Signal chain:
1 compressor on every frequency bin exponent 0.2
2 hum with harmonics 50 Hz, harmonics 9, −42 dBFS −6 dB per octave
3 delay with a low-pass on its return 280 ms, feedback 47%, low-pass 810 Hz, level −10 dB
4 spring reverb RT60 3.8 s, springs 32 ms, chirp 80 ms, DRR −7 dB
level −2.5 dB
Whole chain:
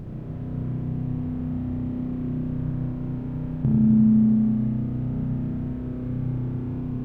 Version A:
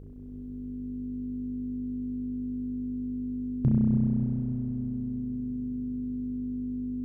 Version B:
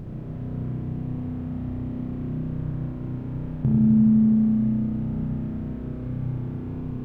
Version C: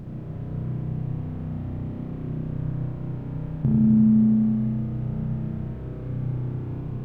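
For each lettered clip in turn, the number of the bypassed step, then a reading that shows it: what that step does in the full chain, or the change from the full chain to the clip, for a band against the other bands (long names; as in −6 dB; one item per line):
1, change in crest factor +2.5 dB
3, change in momentary loudness spread +2 LU
2, change in momentary loudness spread +2 LU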